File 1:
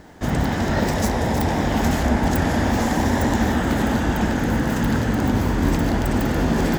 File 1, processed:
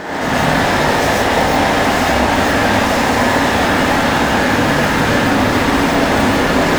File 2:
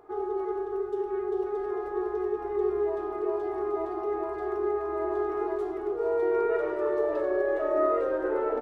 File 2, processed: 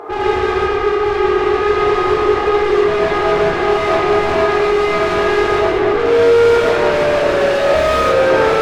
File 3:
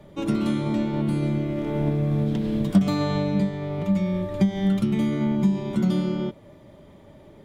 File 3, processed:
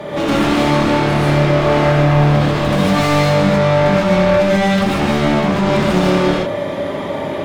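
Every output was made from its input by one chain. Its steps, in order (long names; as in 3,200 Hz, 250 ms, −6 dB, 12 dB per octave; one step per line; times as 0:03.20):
mid-hump overdrive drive 42 dB, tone 2,200 Hz, clips at −5.5 dBFS
reverb whose tail is shaped and stops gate 170 ms rising, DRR −6.5 dB
level −8 dB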